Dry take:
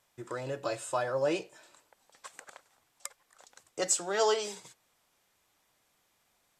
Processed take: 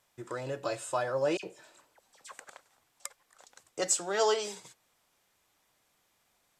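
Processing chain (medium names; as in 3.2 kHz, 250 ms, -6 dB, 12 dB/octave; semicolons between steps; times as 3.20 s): 1.37–2.39 s: phase dispersion lows, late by 64 ms, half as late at 2 kHz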